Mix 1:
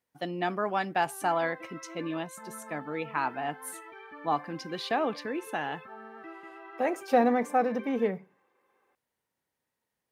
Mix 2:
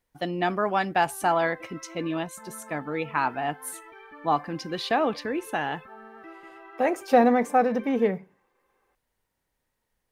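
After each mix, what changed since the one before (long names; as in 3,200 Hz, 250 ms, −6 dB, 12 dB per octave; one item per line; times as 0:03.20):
speech +4.5 dB
master: remove high-pass filter 120 Hz 12 dB per octave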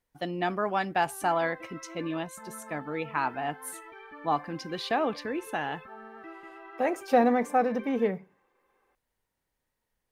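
speech −3.5 dB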